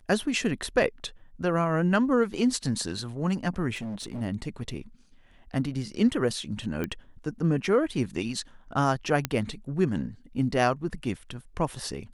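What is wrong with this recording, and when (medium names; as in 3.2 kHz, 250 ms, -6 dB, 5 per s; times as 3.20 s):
3.74–4.22 s: clipped -31 dBFS
6.84 s: pop -18 dBFS
9.25 s: pop -10 dBFS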